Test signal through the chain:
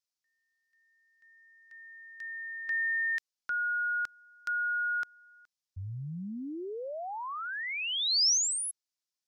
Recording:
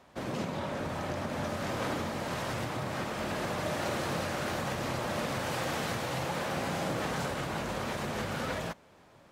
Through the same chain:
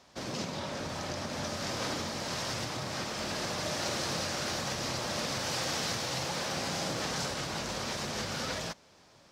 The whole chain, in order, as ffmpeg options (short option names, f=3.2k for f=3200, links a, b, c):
-af "equalizer=f=5.3k:t=o:w=1.2:g=14,volume=-3dB"